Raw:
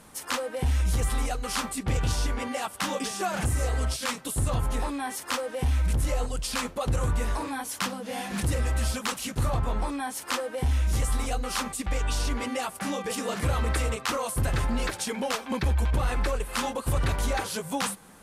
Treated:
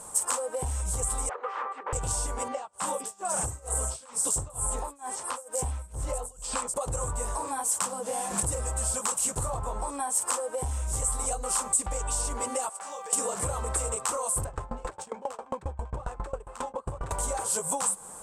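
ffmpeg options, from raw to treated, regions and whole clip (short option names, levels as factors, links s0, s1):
-filter_complex "[0:a]asettb=1/sr,asplit=3[s0][s1][s2];[s0]atrim=end=1.294[s3];[s1]atrim=start=1.29:end=1.93,asetpts=PTS-STARTPTS,afade=t=in:d=0.004:c=qsin,afade=t=out:st=0.636:d=0.004:c=qsin,aeval=exprs='0.0422*(abs(mod(val(0)/0.0422+3,4)-2)-1)':c=same,highpass=f=420:w=0.5412,highpass=f=420:w=1.3066,equalizer=f=460:t=q:w=4:g=3,equalizer=f=660:t=q:w=4:g=-8,equalizer=f=1200:t=q:w=4:g=5,equalizer=f=1800:t=q:w=4:g=6,lowpass=f=2500:w=0.5412,lowpass=f=2500:w=1.3066[s4];[s2]atrim=start=1.926[s5];[s3][s4]acrossfade=d=0.004:c1=hsin:c2=qsin[s6];[s6][s5]acrossfade=d=0.004:c1=qsin:c2=hsin,asettb=1/sr,asplit=3[s7][s8][s9];[s7]atrim=end=2.484[s10];[s8]atrim=start=2.48:end=6.74,asetpts=PTS-STARTPTS,afade=t=in:d=0.004:c=qsin,afade=t=out:st=4.256:d=0.004:c=qsin,acrossover=split=5400[s11][s12];[s12]adelay=250[s13];[s11][s13]amix=inputs=2:normalize=0,atrim=end_sample=187866,tremolo=f=2.2:d=0.96[s14];[s9]atrim=start=6.736[s15];[s10][s14]acrossfade=d=0.004:c1=hsin:c2=qsin[s16];[s16][s15]acrossfade=d=0.004:c1=qsin:c2=hsin,asettb=1/sr,asplit=3[s17][s18][s19];[s17]atrim=end=12.694[s20];[s18]atrim=start=12.69:end=13.13,asetpts=PTS-STARTPTS,afade=t=in:d=0.004:c=qsin,afade=t=out:st=0.436:d=0.004:c=qsin,highpass=630,lowpass=6400,acrusher=bits=7:mode=log:mix=0:aa=0.000001,acompressor=threshold=0.00794:ratio=4:attack=3.2:release=140:knee=1:detection=peak[s21];[s19]atrim=start=13.126[s22];[s20][s21]acrossfade=d=0.004:c1=hsin:c2=qsin[s23];[s23][s22]acrossfade=d=0.004:c1=qsin:c2=hsin,asettb=1/sr,asplit=3[s24][s25][s26];[s24]atrim=end=14.444[s27];[s25]atrim=start=14.44:end=17.11,asetpts=PTS-STARTPTS,afade=t=in:d=0.004:c=qsin,afade=t=out:st=2.666:d=0.004:c=qsin,adynamicsmooth=sensitivity=3:basefreq=1800,aeval=exprs='val(0)*pow(10,-25*if(lt(mod(7.4*n/s,1),2*abs(7.4)/1000),1-mod(7.4*n/s,1)/(2*abs(7.4)/1000),(mod(7.4*n/s,1)-2*abs(7.4)/1000)/(1-2*abs(7.4)/1000))/20)':c=same[s28];[s26]atrim=start=17.106[s29];[s27][s28]acrossfade=d=0.004:c1=hsin:c2=qsin[s30];[s30][s29]acrossfade=d=0.004:c1=qsin:c2=hsin,equalizer=f=250:t=o:w=1:g=-6,equalizer=f=500:t=o:w=1:g=6,equalizer=f=1000:t=o:w=1:g=9,equalizer=f=2000:t=o:w=1:g=-7,equalizer=f=4000:t=o:w=1:g=-5,equalizer=f=8000:t=o:w=1:g=10,acompressor=threshold=0.0355:ratio=6,equalizer=f=8100:w=3.1:g=11.5"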